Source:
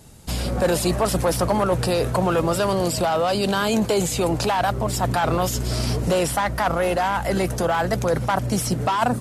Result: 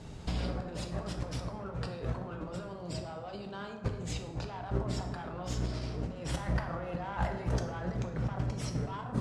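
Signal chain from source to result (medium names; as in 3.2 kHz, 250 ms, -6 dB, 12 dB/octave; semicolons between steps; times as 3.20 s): 2.53–4.66 s: bass shelf 330 Hz +3 dB; compressor with a negative ratio -28 dBFS, ratio -0.5; distance through air 130 m; plate-style reverb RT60 1.3 s, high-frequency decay 0.5×, DRR 3.5 dB; trim -7 dB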